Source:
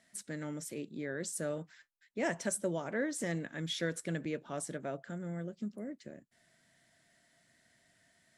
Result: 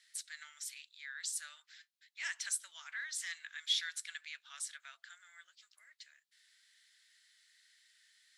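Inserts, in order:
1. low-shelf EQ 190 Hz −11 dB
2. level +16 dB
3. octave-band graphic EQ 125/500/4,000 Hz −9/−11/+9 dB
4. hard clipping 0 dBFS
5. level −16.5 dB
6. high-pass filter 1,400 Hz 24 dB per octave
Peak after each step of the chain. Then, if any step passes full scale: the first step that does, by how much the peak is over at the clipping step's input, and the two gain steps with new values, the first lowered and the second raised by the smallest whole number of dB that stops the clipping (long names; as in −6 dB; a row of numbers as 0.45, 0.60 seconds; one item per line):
−22.5, −6.5, −4.0, −4.0, −20.5, −20.5 dBFS
no step passes full scale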